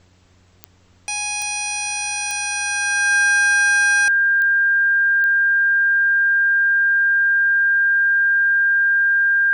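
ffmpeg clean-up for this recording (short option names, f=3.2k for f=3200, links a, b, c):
-af "adeclick=t=4,bandreject=f=90.6:t=h:w=4,bandreject=f=181.2:t=h:w=4,bandreject=f=271.8:t=h:w=4,bandreject=f=362.4:t=h:w=4,bandreject=f=453:t=h:w=4,bandreject=f=1.6k:w=30,agate=range=-21dB:threshold=-45dB"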